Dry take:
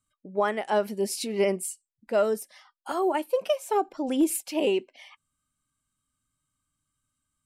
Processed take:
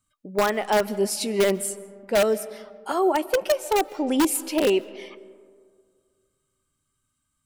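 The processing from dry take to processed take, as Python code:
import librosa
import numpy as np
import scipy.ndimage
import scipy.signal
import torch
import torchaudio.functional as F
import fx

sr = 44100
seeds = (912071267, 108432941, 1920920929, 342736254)

p1 = (np.mod(10.0 ** (16.5 / 20.0) * x + 1.0, 2.0) - 1.0) / 10.0 ** (16.5 / 20.0)
p2 = x + F.gain(torch.from_numpy(p1), -4.0).numpy()
y = fx.rev_freeverb(p2, sr, rt60_s=2.0, hf_ratio=0.35, predelay_ms=100, drr_db=18.5)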